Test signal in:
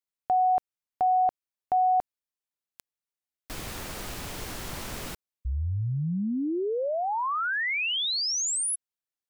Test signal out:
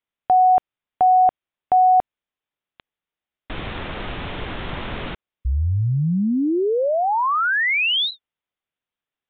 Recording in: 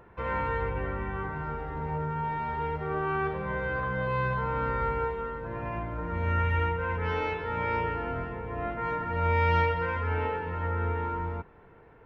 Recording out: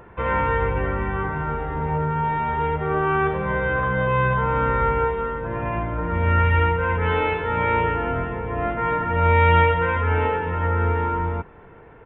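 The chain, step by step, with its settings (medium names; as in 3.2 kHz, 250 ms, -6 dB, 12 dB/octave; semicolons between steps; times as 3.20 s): resampled via 8 kHz; trim +8.5 dB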